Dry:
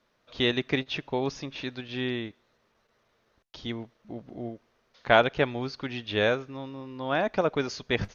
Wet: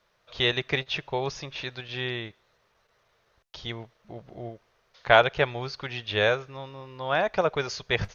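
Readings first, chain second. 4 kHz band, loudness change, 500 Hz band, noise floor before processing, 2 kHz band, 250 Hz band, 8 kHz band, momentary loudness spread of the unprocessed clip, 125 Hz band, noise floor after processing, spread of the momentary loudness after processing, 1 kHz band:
+3.0 dB, +2.0 dB, +1.0 dB, −71 dBFS, +3.0 dB, −6.0 dB, can't be measured, 17 LU, +1.0 dB, −69 dBFS, 20 LU, +2.5 dB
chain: parametric band 260 Hz −14.5 dB 0.7 octaves
level +3 dB

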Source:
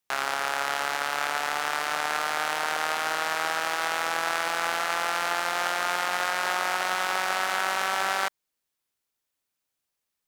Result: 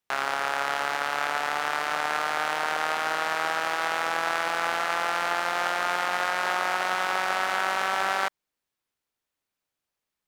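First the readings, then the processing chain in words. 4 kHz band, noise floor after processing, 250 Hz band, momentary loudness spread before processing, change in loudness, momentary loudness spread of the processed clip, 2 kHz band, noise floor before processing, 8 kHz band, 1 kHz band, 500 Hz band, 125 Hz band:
−1.5 dB, below −85 dBFS, +1.5 dB, 2 LU, +0.5 dB, 2 LU, +0.5 dB, −83 dBFS, −4.5 dB, +1.0 dB, +1.5 dB, +1.5 dB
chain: high-shelf EQ 4,300 Hz −8 dB
level +1.5 dB

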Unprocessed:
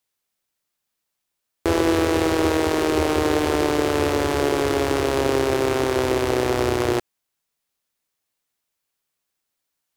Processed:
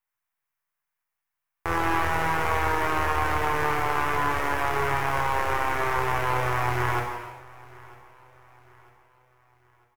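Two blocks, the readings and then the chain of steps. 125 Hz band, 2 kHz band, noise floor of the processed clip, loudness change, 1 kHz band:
−3.0 dB, +1.5 dB, −85 dBFS, −4.5 dB, +2.5 dB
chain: gain on one half-wave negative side −12 dB
octave-band graphic EQ 250/500/1,000/2,000/4,000/8,000 Hz −11/−6/+7/+6/−10/−6 dB
repeating echo 949 ms, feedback 44%, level −22.5 dB
reverb whose tail is shaped and stops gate 450 ms falling, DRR −0.5 dB
level −5 dB

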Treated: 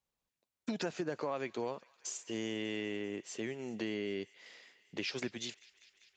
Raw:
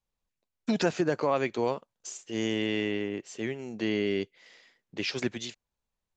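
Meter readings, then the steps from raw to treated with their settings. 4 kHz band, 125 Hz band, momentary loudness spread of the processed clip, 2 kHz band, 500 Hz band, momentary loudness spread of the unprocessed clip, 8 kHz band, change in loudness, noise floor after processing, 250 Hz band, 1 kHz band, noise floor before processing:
−6.5 dB, −10.5 dB, 9 LU, −8.0 dB, −9.0 dB, 12 LU, −2.5 dB, −8.5 dB, below −85 dBFS, −9.0 dB, −10.0 dB, below −85 dBFS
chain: downward compressor 3 to 1, threshold −36 dBFS, peak gain reduction 12 dB
high-pass filter 110 Hz 6 dB per octave
delay with a high-pass on its return 197 ms, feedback 81%, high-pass 1,400 Hz, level −22 dB

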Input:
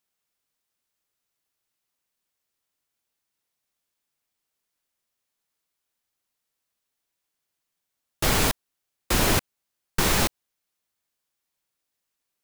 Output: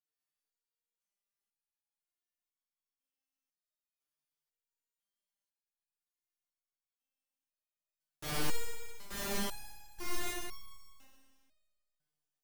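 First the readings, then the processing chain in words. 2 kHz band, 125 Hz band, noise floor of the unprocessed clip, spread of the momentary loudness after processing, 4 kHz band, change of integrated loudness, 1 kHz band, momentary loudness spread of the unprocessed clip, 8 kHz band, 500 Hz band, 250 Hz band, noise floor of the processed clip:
−14.5 dB, −18.0 dB, −82 dBFS, 15 LU, −14.5 dB, −16.0 dB, −15.0 dB, 7 LU, −14.5 dB, −14.0 dB, −14.0 dB, below −85 dBFS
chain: four-comb reverb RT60 1.8 s, combs from 26 ms, DRR −5 dB
step-sequenced resonator 2 Hz 150–1,100 Hz
level −7 dB

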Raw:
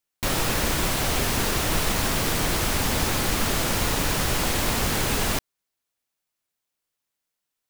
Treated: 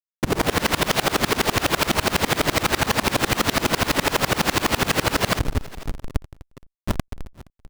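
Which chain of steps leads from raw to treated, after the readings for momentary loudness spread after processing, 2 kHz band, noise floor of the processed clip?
12 LU, +4.5 dB, below −85 dBFS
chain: dead-zone distortion −38 dBFS
brickwall limiter −21 dBFS, peak gain reduction 10.5 dB
low-pass filter 5,500 Hz 24 dB per octave
automatic gain control gain up to 15 dB
high-pass filter 160 Hz 6 dB per octave
sound drawn into the spectrogram fall, 0:06.86–0:07.28, 220–1,200 Hz −32 dBFS
echo with a time of its own for lows and highs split 870 Hz, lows 96 ms, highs 775 ms, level −15.5 dB
comparator with hysteresis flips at −26.5 dBFS
single-tap delay 470 ms −19.5 dB
tremolo with a ramp in dB swelling 12 Hz, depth 27 dB
level +7.5 dB

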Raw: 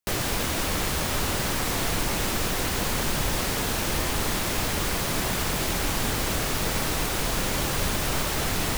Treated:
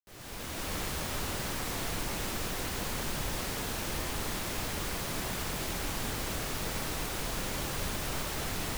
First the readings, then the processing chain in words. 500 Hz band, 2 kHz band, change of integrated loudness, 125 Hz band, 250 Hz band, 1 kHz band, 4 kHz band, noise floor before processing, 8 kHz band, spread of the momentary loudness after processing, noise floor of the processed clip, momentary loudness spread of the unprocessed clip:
−8.5 dB, −8.5 dB, −8.5 dB, −8.5 dB, −8.5 dB, −8.5 dB, −8.5 dB, −28 dBFS, −8.5 dB, 0 LU, −39 dBFS, 0 LU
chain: fade in at the beginning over 0.74 s
level −8.5 dB

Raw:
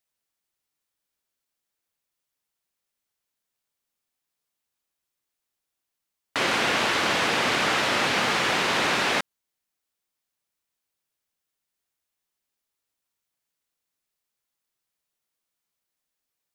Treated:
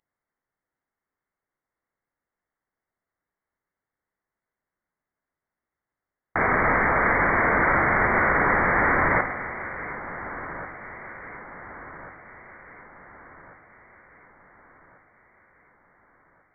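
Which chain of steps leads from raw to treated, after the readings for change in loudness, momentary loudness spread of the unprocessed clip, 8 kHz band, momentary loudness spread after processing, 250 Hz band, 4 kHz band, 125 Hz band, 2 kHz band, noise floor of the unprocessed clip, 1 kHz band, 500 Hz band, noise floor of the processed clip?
+0.5 dB, 4 LU, below −40 dB, 20 LU, +3.0 dB, below −40 dB, +7.5 dB, +4.0 dB, −84 dBFS, +4.5 dB, +3.0 dB, below −85 dBFS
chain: high-pass filter 580 Hz 24 dB per octave
on a send: delay that swaps between a low-pass and a high-pass 721 ms, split 860 Hz, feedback 69%, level −11 dB
on the sum: spring reverb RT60 1.1 s, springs 50 ms, chirp 35 ms, DRR 8 dB
voice inversion scrambler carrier 2,700 Hz
level +4 dB

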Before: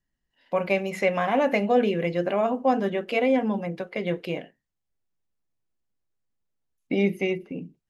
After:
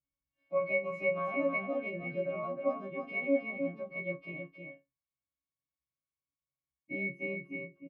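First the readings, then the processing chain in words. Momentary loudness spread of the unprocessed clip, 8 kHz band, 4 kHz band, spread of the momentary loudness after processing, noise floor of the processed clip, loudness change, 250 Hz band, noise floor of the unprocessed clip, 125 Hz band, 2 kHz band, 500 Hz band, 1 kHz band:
9 LU, can't be measured, below −20 dB, 11 LU, below −85 dBFS, −9.5 dB, −12.5 dB, −81 dBFS, −13.0 dB, −4.5 dB, −9.5 dB, −13.5 dB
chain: every partial snapped to a pitch grid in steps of 2 semitones
resonances in every octave C#, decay 0.1 s
single-tap delay 311 ms −5 dB
level −4 dB

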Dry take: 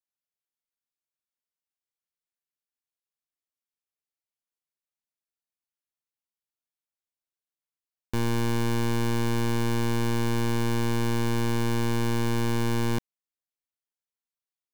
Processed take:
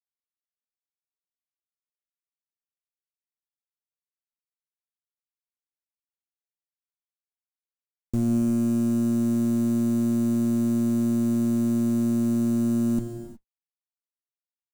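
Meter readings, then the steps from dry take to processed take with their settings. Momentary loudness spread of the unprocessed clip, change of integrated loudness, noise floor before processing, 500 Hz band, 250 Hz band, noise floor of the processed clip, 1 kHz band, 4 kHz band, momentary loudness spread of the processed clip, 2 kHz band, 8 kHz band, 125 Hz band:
1 LU, +3.5 dB, below −85 dBFS, −3.0 dB, +7.5 dB, below −85 dBFS, −12.5 dB, below −10 dB, 2 LU, below −15 dB, −2.5 dB, −3.0 dB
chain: Chebyshev band-stop filter 300–7,300 Hz, order 3
high-shelf EQ 9,300 Hz −8.5 dB
harmonic generator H 7 −24 dB, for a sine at −21 dBFS
speech leveller 2 s
octave-band graphic EQ 250/500/2,000 Hz +5/+4/−6 dB
log-companded quantiser 6 bits
soft clipping −19.5 dBFS, distortion −19 dB
reverb whose tail is shaped and stops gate 390 ms flat, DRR 7 dB
level +3.5 dB

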